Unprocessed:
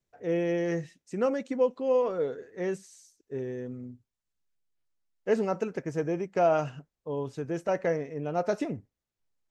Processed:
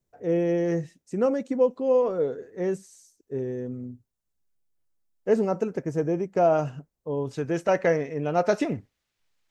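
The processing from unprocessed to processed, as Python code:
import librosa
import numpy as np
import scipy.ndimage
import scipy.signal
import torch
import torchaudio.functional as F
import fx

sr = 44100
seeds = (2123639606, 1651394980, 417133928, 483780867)

y = fx.peak_eq(x, sr, hz=2700.0, db=fx.steps((0.0, -8.0), (7.31, 3.0), (8.72, 10.0)), octaves=2.7)
y = F.gain(torch.from_numpy(y), 5.0).numpy()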